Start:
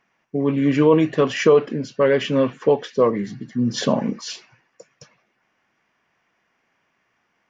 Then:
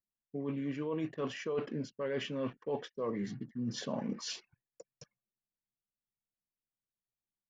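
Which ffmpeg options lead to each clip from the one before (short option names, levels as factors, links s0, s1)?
-af "areverse,acompressor=threshold=0.0562:ratio=8,areverse,anlmdn=0.0251,volume=0.398"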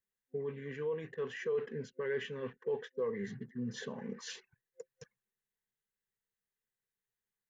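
-af "alimiter=level_in=2.37:limit=0.0631:level=0:latency=1:release=458,volume=0.422,superequalizer=6b=0.316:7b=2.24:8b=0.447:11b=2.51:14b=0.562"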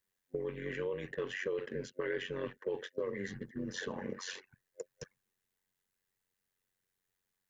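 -filter_complex "[0:a]tremolo=f=92:d=0.75,acrossover=split=370|2100[s0][s1][s2];[s0]acompressor=threshold=0.00224:ratio=4[s3];[s1]acompressor=threshold=0.00398:ratio=4[s4];[s2]acompressor=threshold=0.002:ratio=4[s5];[s3][s4][s5]amix=inputs=3:normalize=0,volume=3.16"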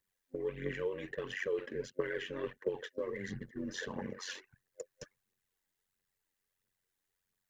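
-af "aphaser=in_gain=1:out_gain=1:delay=3.8:decay=0.49:speed=1.5:type=triangular,volume=0.841"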